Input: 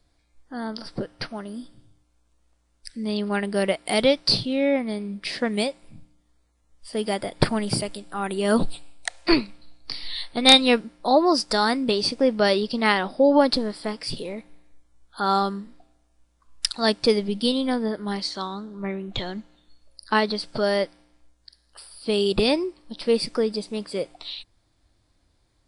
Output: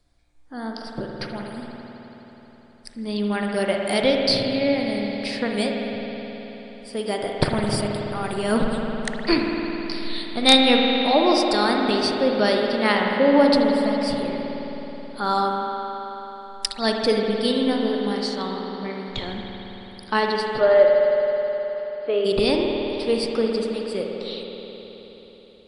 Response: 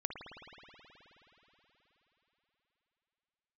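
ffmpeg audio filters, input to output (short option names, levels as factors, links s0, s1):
-filter_complex "[0:a]asplit=3[s0][s1][s2];[s0]afade=t=out:st=20.59:d=0.02[s3];[s1]highpass=f=310:w=0.5412,highpass=f=310:w=1.3066,equalizer=f=350:t=q:w=4:g=6,equalizer=f=590:t=q:w=4:g=9,equalizer=f=880:t=q:w=4:g=-4,equalizer=f=1300:t=q:w=4:g=5,lowpass=f=2600:w=0.5412,lowpass=f=2600:w=1.3066,afade=t=in:st=20.59:d=0.02,afade=t=out:st=22.24:d=0.02[s4];[s2]afade=t=in:st=22.24:d=0.02[s5];[s3][s4][s5]amix=inputs=3:normalize=0[s6];[1:a]atrim=start_sample=2205[s7];[s6][s7]afir=irnorm=-1:irlink=0"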